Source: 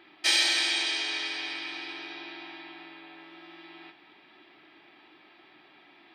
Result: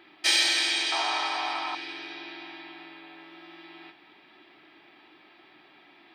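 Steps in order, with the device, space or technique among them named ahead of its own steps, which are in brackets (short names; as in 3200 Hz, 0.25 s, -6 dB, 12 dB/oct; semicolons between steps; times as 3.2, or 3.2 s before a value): exciter from parts (in parallel at -13.5 dB: HPF 4500 Hz 12 dB/oct + soft clip -29 dBFS, distortion -11 dB); 0.92–1.75 on the sum: band shelf 920 Hz +15.5 dB 1.3 oct; gain +1 dB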